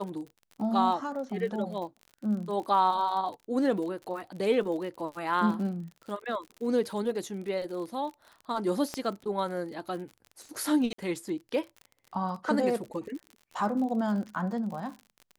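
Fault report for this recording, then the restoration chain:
surface crackle 50 per second −38 dBFS
0:08.94: click −18 dBFS
0:10.93–0:10.98: drop-out 54 ms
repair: click removal
repair the gap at 0:10.93, 54 ms

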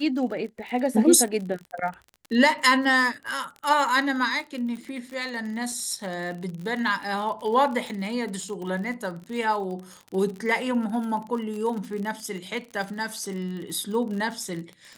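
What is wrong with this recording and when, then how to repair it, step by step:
surface crackle 43 per second −32 dBFS
0:05.72: drop-out 2.3 ms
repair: click removal
repair the gap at 0:05.72, 2.3 ms

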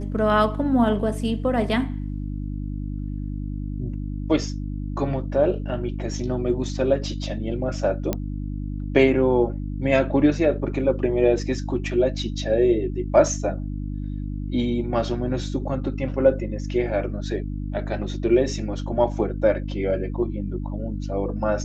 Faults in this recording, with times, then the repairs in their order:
mains hum 50 Hz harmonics 6 −29 dBFS
0:08.13: click −10 dBFS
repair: click removal
hum removal 50 Hz, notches 6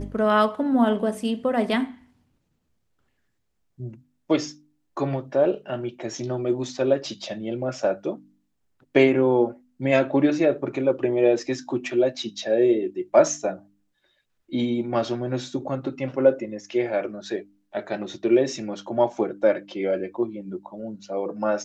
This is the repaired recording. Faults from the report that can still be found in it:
none of them is left

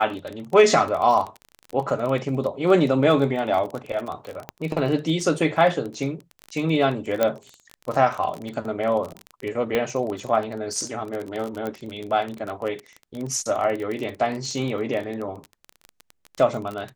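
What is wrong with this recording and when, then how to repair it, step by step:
surface crackle 23 per second −27 dBFS
0:04.49: click −16 dBFS
0:07.23: click −7 dBFS
0:09.75: click −10 dBFS
0:11.67: click −18 dBFS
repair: click removal

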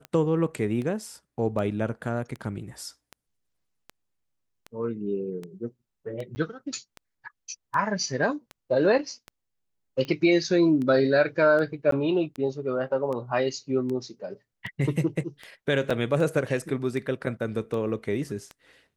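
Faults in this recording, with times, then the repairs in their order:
scratch tick 78 rpm −23 dBFS
0:06.35–0:06.36: drop-out 10 ms
0:11.91–0:11.92: drop-out 13 ms
0:15.90–0:15.91: drop-out 5.1 ms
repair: click removal
repair the gap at 0:06.35, 10 ms
repair the gap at 0:11.91, 13 ms
repair the gap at 0:15.90, 5.1 ms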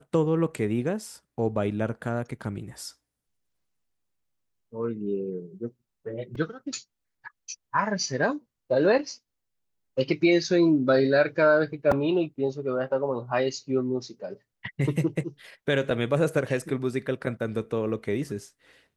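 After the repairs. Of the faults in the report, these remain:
none of them is left

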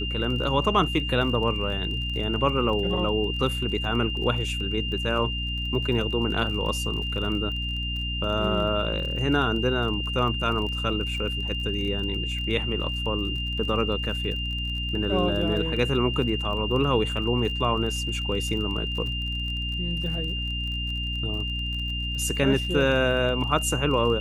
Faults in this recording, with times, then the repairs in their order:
surface crackle 30 per second −33 dBFS
mains hum 60 Hz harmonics 5 −31 dBFS
whistle 2,800 Hz −30 dBFS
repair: click removal
hum removal 60 Hz, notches 5
notch filter 2,800 Hz, Q 30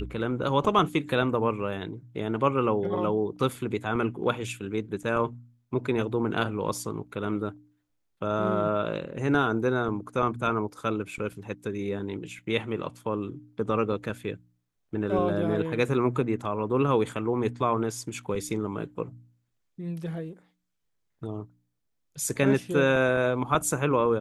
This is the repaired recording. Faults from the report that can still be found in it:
none of them is left

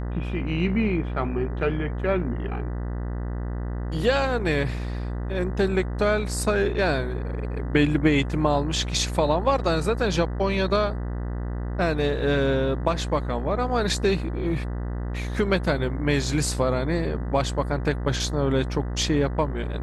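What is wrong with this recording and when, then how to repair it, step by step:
mains buzz 60 Hz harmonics 33 −29 dBFS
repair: hum removal 60 Hz, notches 33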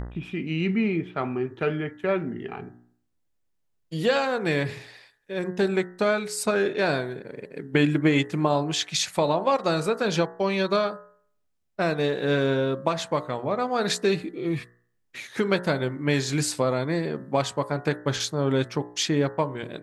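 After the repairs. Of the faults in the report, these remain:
none of them is left

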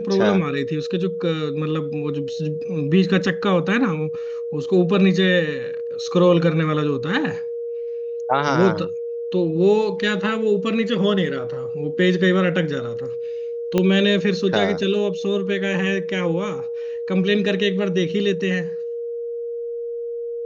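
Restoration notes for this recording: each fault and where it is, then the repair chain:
whistle 470 Hz −25 dBFS
0:13.78: click −7 dBFS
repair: click removal
notch filter 470 Hz, Q 30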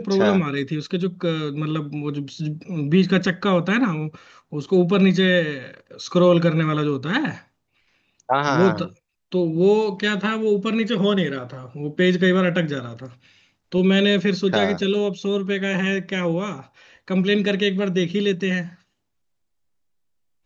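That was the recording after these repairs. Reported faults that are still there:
0:13.78: click

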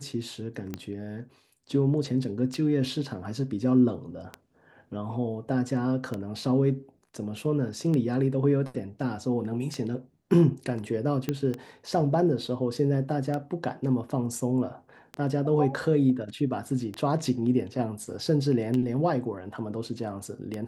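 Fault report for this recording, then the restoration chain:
scratch tick 33 1/3 rpm −19 dBFS
0:11.29: click −14 dBFS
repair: click removal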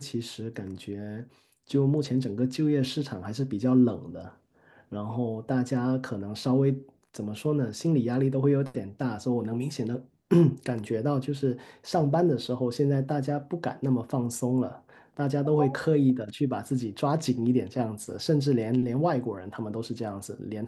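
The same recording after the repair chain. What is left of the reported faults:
none of them is left

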